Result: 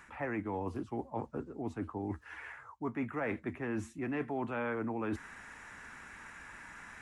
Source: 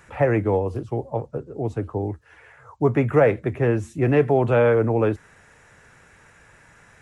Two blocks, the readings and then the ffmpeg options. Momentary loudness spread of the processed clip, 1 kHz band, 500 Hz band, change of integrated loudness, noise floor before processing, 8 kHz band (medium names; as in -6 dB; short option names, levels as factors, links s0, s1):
13 LU, -12.0 dB, -19.5 dB, -17.5 dB, -53 dBFS, no reading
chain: -af "equalizer=f=125:t=o:w=1:g=-10,equalizer=f=250:t=o:w=1:g=8,equalizer=f=500:t=o:w=1:g=-9,equalizer=f=1000:t=o:w=1:g=6,equalizer=f=2000:t=o:w=1:g=4,areverse,acompressor=threshold=0.02:ratio=5,areverse,volume=0.891"